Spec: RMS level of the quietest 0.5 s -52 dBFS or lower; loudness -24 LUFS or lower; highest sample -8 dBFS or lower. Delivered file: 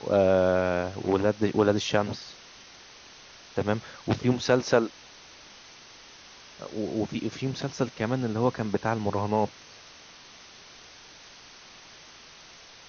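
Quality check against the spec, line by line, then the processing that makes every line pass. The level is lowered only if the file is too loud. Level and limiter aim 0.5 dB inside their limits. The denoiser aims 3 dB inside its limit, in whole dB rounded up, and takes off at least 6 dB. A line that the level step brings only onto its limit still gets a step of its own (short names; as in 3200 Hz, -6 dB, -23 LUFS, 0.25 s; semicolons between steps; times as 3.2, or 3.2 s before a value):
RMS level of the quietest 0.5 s -50 dBFS: fail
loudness -27.0 LUFS: OK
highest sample -7.5 dBFS: fail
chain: denoiser 6 dB, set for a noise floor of -50 dBFS; limiter -8.5 dBFS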